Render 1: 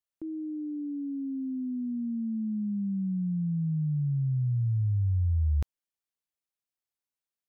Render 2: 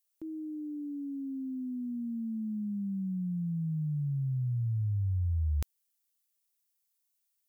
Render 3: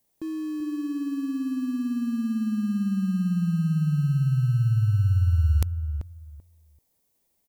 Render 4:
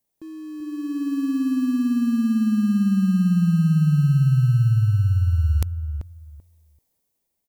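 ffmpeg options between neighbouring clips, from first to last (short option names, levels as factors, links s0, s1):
-af "crystalizer=i=5:c=0,volume=0.631"
-filter_complex "[0:a]asplit=2[s0][s1];[s1]acrusher=samples=31:mix=1:aa=0.000001,volume=0.282[s2];[s0][s2]amix=inputs=2:normalize=0,asplit=2[s3][s4];[s4]adelay=387,lowpass=f=820:p=1,volume=0.398,asplit=2[s5][s6];[s6]adelay=387,lowpass=f=820:p=1,volume=0.19,asplit=2[s7][s8];[s8]adelay=387,lowpass=f=820:p=1,volume=0.19[s9];[s3][s5][s7][s9]amix=inputs=4:normalize=0,volume=2.11"
-af "dynaudnorm=f=140:g=13:m=4.22,volume=0.501"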